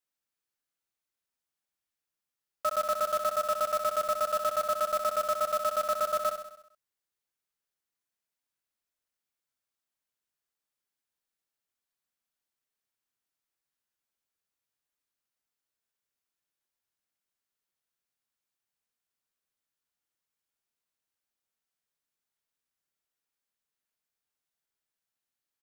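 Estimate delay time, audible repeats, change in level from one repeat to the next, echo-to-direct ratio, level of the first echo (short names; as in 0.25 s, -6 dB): 65 ms, 6, -5.0 dB, -6.5 dB, -8.0 dB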